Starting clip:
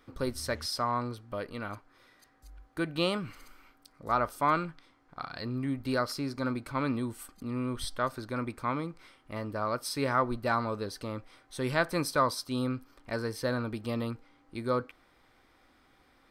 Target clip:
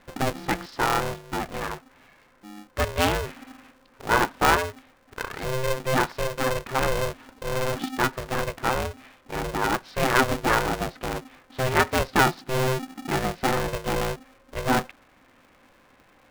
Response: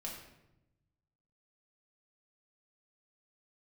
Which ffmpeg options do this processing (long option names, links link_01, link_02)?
-filter_complex "[0:a]lowpass=frequency=2900:width=0.5412,lowpass=frequency=2900:width=1.3066,asettb=1/sr,asplit=3[link_01][link_02][link_03];[link_01]atrim=end=12.134[link_04];[link_02]atrim=start=12.13:end=13.19,asetpts=PTS-STARTPTS,afade=type=in:duration=0.004:curve=qsin,afade=type=out:start_time=1.056:duration=0.004:curve=qsin,lowshelf=frequency=120:width_type=q:width=1.5:gain=14[link_05];[link_03]atrim=start=13.186[link_06];[link_04][link_05]acrossfade=duration=0.004:curve1=hsin:curve2=qsin[link_07];[link_07][link_06]acrossfade=duration=0.004:curve1=qsin:curve2=hsin,aeval=exprs='val(0)*sgn(sin(2*PI*260*n/s))':channel_layout=same,volume=7dB"